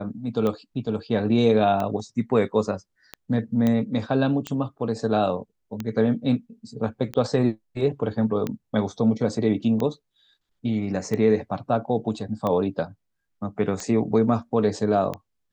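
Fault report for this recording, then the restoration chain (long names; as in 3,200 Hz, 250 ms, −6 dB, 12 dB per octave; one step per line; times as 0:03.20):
scratch tick 45 rpm −15 dBFS
0:03.67: click −12 dBFS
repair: click removal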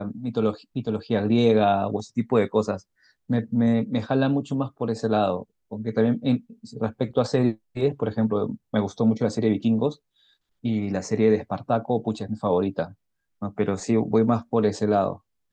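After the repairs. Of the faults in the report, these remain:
none of them is left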